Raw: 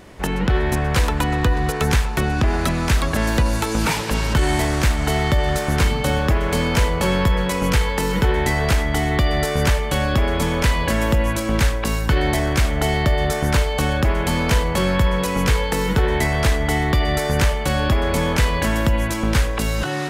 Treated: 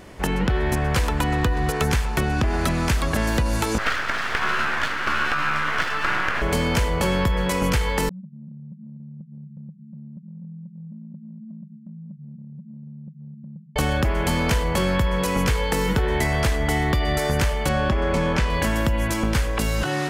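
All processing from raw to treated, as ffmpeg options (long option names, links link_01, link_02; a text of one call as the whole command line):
ffmpeg -i in.wav -filter_complex "[0:a]asettb=1/sr,asplit=3[link_01][link_02][link_03];[link_01]atrim=end=3.784[link_04];[link_02]atrim=start=3.78:end=6.42,asetpts=PTS-STARTPTS,afade=type=in:duration=0.004:curve=qsin,afade=type=out:start_time=2.636:duration=0.004:curve=qsin,highpass=420,lowpass=2700,aeval=exprs='abs(val(0))':channel_layout=same,equalizer=frequency=1500:width=1.3:gain=12.5[link_05];[link_03]atrim=start=6.416[link_06];[link_04][link_05]acrossfade=duration=0.004:curve1=hsin:curve2=qsin[link_07];[link_07][link_06]acrossfade=duration=0.004:curve1=qsin:curve2=hsin,asettb=1/sr,asplit=3[link_08][link_09][link_10];[link_08]atrim=end=8.094[link_11];[link_09]atrim=start=8.09:end=13.76,asetpts=PTS-STARTPTS,afade=type=in:duration=0.004:curve=qsin,afade=type=out:start_time=5.666:duration=0.004:curve=qsin,asuperpass=centerf=180:order=12:qfactor=2.7,acompressor=threshold=-36dB:ratio=6:attack=3.2:release=140:knee=1:detection=peak[link_12];[link_10]atrim=start=13.756[link_13];[link_11][link_12]acrossfade=duration=0.004:curve1=hsin:curve2=qsin[link_14];[link_14][link_13]acrossfade=duration=0.004:curve1=qsin:curve2=hsin,asettb=1/sr,asplit=3[link_15][link_16][link_17];[link_15]atrim=end=17.694[link_18];[link_16]atrim=start=17.69:end=18.5,asetpts=PTS-STARTPTS,afade=type=in:duration=0.004:curve=qsin,afade=type=out:start_time=0.806:duration=0.004:curve=qsin,highshelf=frequency=7700:gain=-10,aecho=1:1:5.3:0.34,atrim=end_sample=35721,adynamicsmooth=sensitivity=6:basefreq=7200[link_19];[link_17]atrim=start=18.496[link_20];[link_18][link_19]acrossfade=duration=0.004:curve1=hsin:curve2=qsin[link_21];[link_21][link_20]acrossfade=duration=0.004:curve1=qsin:curve2=hsin,bandreject=frequency=3800:width=23,acompressor=threshold=-17dB:ratio=6" out.wav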